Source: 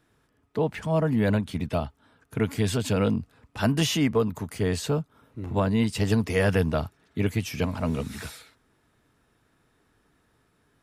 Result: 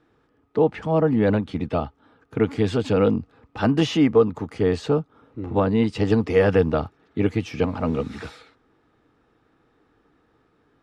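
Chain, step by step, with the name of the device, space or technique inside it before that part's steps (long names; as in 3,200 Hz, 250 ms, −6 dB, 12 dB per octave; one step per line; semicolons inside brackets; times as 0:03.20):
inside a cardboard box (low-pass filter 4,400 Hz 12 dB per octave; hollow resonant body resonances 320/470/790/1,200 Hz, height 8 dB, ringing for 25 ms)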